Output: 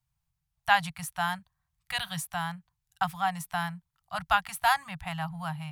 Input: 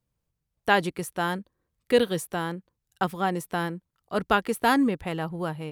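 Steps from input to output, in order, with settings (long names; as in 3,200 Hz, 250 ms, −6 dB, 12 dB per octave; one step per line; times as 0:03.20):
elliptic band-stop filter 160–740 Hz, stop band 40 dB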